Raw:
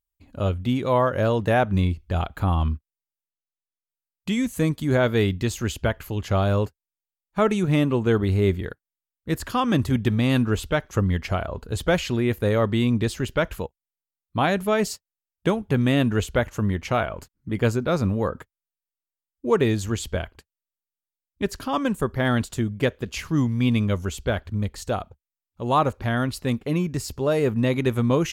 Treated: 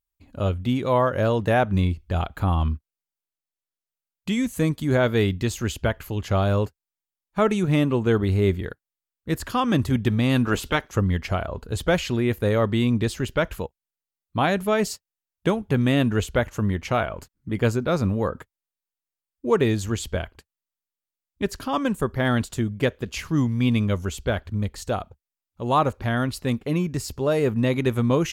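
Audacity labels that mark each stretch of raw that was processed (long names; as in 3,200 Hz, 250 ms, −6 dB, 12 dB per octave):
10.440000	10.910000	ceiling on every frequency bin ceiling under each frame's peak by 13 dB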